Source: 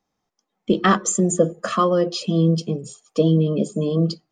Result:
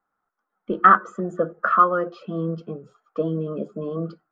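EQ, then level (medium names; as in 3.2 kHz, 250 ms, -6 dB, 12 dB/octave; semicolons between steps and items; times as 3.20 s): resonant low-pass 1.4 kHz, resonance Q 8.1; peaking EQ 98 Hz -7.5 dB 2.9 oct; -5.0 dB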